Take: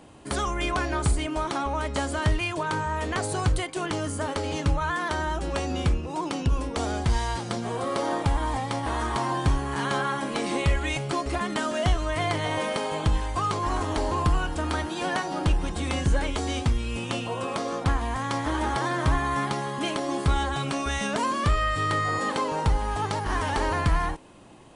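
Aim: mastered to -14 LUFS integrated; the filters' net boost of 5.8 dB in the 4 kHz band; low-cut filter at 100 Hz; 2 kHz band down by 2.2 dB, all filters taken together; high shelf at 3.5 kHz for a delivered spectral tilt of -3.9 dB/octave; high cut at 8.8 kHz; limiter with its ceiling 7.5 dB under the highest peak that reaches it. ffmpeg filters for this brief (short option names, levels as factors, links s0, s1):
-af "highpass=100,lowpass=8800,equalizer=f=2000:t=o:g=-5.5,highshelf=f=3500:g=4,equalizer=f=4000:t=o:g=7,volume=5.62,alimiter=limit=0.668:level=0:latency=1"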